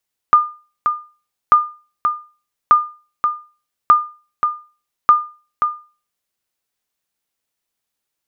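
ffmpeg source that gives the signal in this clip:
ffmpeg -f lavfi -i "aevalsrc='0.794*(sin(2*PI*1210*mod(t,1.19))*exp(-6.91*mod(t,1.19)/0.35)+0.447*sin(2*PI*1210*max(mod(t,1.19)-0.53,0))*exp(-6.91*max(mod(t,1.19)-0.53,0)/0.35))':duration=5.95:sample_rate=44100" out.wav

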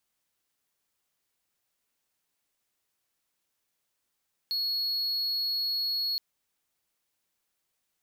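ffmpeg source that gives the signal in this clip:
ffmpeg -f lavfi -i "aevalsrc='0.0562*(1-4*abs(mod(4340*t+0.25,1)-0.5))':duration=1.67:sample_rate=44100" out.wav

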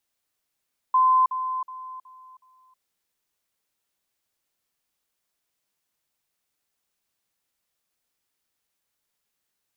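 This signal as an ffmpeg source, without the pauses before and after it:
ffmpeg -f lavfi -i "aevalsrc='pow(10,(-15-10*floor(t/0.37))/20)*sin(2*PI*1030*t)*clip(min(mod(t,0.37),0.32-mod(t,0.37))/0.005,0,1)':duration=1.85:sample_rate=44100" out.wav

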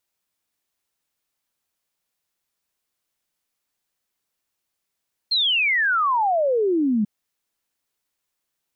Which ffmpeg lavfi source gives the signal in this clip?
ffmpeg -f lavfi -i "aevalsrc='0.141*clip(min(t,1.74-t)/0.01,0,1)*sin(2*PI*4300*1.74/log(200/4300)*(exp(log(200/4300)*t/1.74)-1))':duration=1.74:sample_rate=44100" out.wav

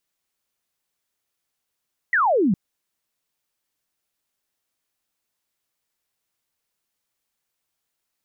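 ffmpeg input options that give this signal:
ffmpeg -f lavfi -i "aevalsrc='0.168*clip(t/0.002,0,1)*clip((0.41-t)/0.002,0,1)*sin(2*PI*2000*0.41/log(170/2000)*(exp(log(170/2000)*t/0.41)-1))':duration=0.41:sample_rate=44100" out.wav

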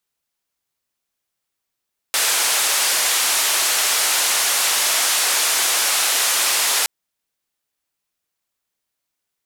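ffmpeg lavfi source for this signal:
ffmpeg -f lavfi -i "anoisesrc=color=white:duration=4.72:sample_rate=44100:seed=1,highpass=frequency=620,lowpass=frequency=11000,volume=-10.4dB" out.wav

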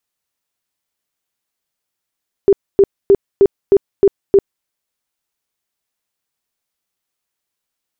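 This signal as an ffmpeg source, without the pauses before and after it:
ffmpeg -f lavfi -i "aevalsrc='0.596*sin(2*PI*396*mod(t,0.31))*lt(mod(t,0.31),19/396)':duration=2.17:sample_rate=44100" out.wav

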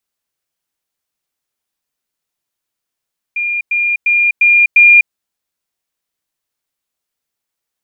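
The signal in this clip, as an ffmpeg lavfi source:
ffmpeg -f lavfi -i "aevalsrc='pow(10,(-14.5+3*floor(t/0.35))/20)*sin(2*PI*2410*t)*clip(min(mod(t,0.35),0.25-mod(t,0.35))/0.005,0,1)':duration=1.75:sample_rate=44100" out.wav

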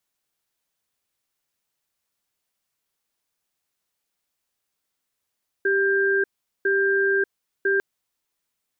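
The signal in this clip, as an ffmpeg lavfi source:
ffmpeg -f lavfi -i "aevalsrc='0.0944*(sin(2*PI*392*t)+sin(2*PI*1590*t))*clip(min(mod(t,1),0.59-mod(t,1))/0.005,0,1)':duration=2.15:sample_rate=44100" out.wav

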